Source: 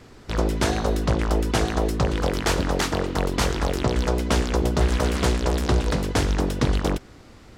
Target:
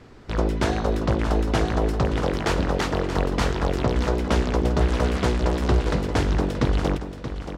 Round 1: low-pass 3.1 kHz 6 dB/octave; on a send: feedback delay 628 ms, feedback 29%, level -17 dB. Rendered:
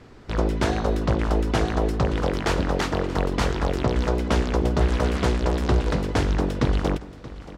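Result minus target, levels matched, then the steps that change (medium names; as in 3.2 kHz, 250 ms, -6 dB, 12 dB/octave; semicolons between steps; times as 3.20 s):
echo-to-direct -7 dB
change: feedback delay 628 ms, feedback 29%, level -10 dB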